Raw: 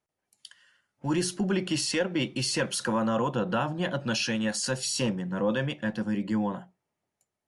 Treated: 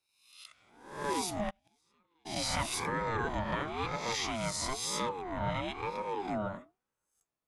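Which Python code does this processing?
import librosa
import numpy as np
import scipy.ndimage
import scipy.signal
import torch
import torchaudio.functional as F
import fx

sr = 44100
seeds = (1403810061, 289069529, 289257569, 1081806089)

y = fx.spec_swells(x, sr, rise_s=0.68)
y = fx.gate_flip(y, sr, shuts_db=-20.0, range_db=-40, at=(1.49, 2.25), fade=0.02)
y = fx.ring_lfo(y, sr, carrier_hz=560.0, swing_pct=30, hz=1.0)
y = y * librosa.db_to_amplitude(-5.0)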